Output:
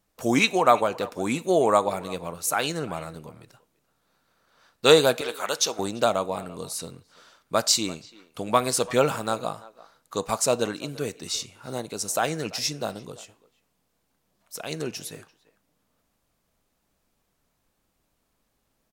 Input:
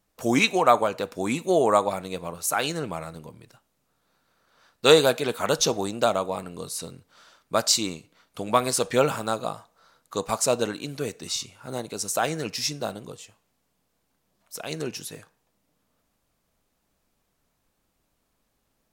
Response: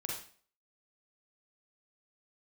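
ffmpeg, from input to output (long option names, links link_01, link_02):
-filter_complex "[0:a]asettb=1/sr,asplit=3[link_01][link_02][link_03];[link_01]atrim=end=5.214[link_04];[link_02]atrim=start=5.21:end=5.79,asetpts=PTS-STARTPTS,afade=type=in:duration=0.004:curve=qsin,afade=type=out:start_time=0.576:duration=0.004:curve=qsin,highpass=frequency=950:poles=1[link_05];[link_03]atrim=start=5.786[link_06];[link_04][link_05]acrossfade=duration=0.004:curve1=hsin:curve2=qsin[link_07];[link_07][link_06]acrossfade=duration=0.004:curve1=qsin:curve2=hsin,asplit=2[link_08][link_09];[link_09]adelay=340,highpass=300,lowpass=3400,asoftclip=type=hard:threshold=-10dB,volume=-20dB[link_10];[link_08][link_10]amix=inputs=2:normalize=0"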